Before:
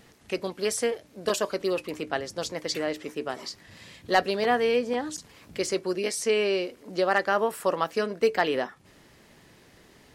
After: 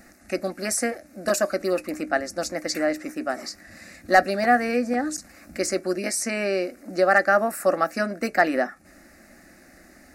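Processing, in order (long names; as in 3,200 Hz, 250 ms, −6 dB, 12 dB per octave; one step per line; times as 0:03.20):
phaser with its sweep stopped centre 650 Hz, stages 8
level +7.5 dB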